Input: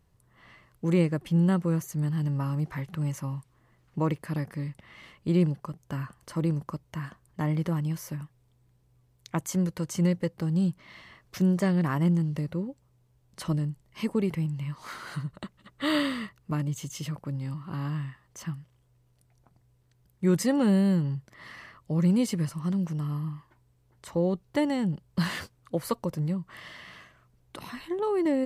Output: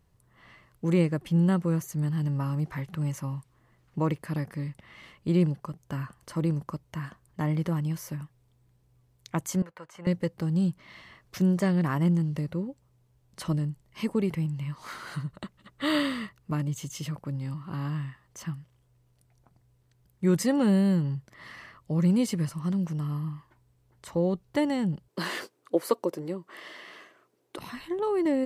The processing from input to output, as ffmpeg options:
-filter_complex "[0:a]asettb=1/sr,asplit=3[s0][s1][s2];[s0]atrim=end=9.624[s3];[s1]atrim=start=9.62:end=10.07,asetpts=PTS-STARTPTS,afade=t=in:d=0.004:c=qsin,afade=t=out:st=0.446:d=0.004:c=qsin,acrossover=split=590 2400:gain=0.0794 1 0.112[s4][s5][s6];[s4][s5][s6]amix=inputs=3:normalize=0[s7];[s2]atrim=start=10.066[s8];[s3][s7]acrossfade=d=0.004:c1=hsin:c2=qsin[s9];[s9][s8]acrossfade=d=0.004:c1=qsin:c2=hsin,asettb=1/sr,asplit=3[s10][s11][s12];[s10]atrim=end=25.084[s13];[s11]atrim=start=25.08:end=27.58,asetpts=PTS-STARTPTS,afade=t=in:d=0.004:c=qsin,afade=t=out:st=2.496:d=0.004:c=qsin,highpass=f=360:t=q:w=2.6[s14];[s12]atrim=start=27.576[s15];[s13][s14]acrossfade=d=0.004:c1=hsin:c2=qsin[s16];[s16][s15]acrossfade=d=0.004:c1=qsin:c2=hsin"

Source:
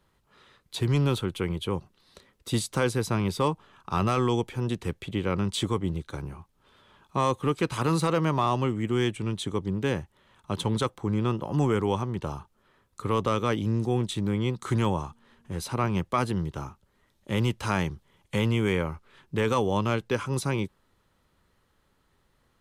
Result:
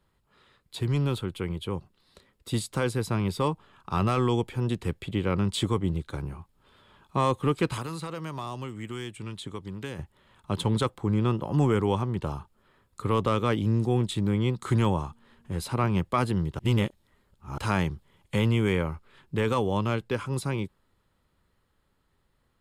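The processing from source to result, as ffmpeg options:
-filter_complex "[0:a]asettb=1/sr,asplit=3[s0][s1][s2];[s0]atrim=end=7.774[s3];[s1]atrim=start=7.77:end=9.99,asetpts=PTS-STARTPTS,afade=t=in:d=0.004:c=qsin,afade=t=out:st=2.216:d=0.004:c=qsin,acrossover=split=960|4600[s4][s5][s6];[s4]acompressor=threshold=0.0141:ratio=4[s7];[s5]acompressor=threshold=0.00794:ratio=4[s8];[s6]acompressor=threshold=0.00447:ratio=4[s9];[s7][s8][s9]amix=inputs=3:normalize=0[s10];[s2]atrim=start=9.986[s11];[s3][s10]acrossfade=d=0.004:c1=hsin:c2=qsin[s12];[s12][s11]acrossfade=d=0.004:c1=qsin:c2=hsin,asplit=3[s13][s14][s15];[s13]atrim=end=16.592[s16];[s14]atrim=start=16.588:end=17.582,asetpts=PTS-STARTPTS,areverse[s17];[s15]atrim=start=17.578[s18];[s16][s17]acrossfade=d=0.004:c1=hsin:c2=hsin[s19];[s19][s18]acrossfade=d=0.004:c1=hsin:c2=hsin,lowshelf=f=170:g=3.5,bandreject=f=6000:w=8.4,dynaudnorm=f=410:g=17:m=1.58,volume=0.631"

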